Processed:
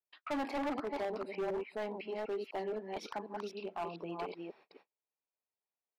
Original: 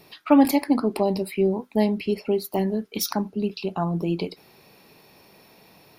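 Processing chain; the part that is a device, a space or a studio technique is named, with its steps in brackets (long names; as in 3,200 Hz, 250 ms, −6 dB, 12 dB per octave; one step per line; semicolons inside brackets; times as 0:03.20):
delay that plays each chunk backwards 251 ms, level −3.5 dB
walkie-talkie (band-pass filter 500–2,300 Hz; hard clipping −24.5 dBFS, distortion −8 dB; noise gate −50 dBFS, range −39 dB)
level −8 dB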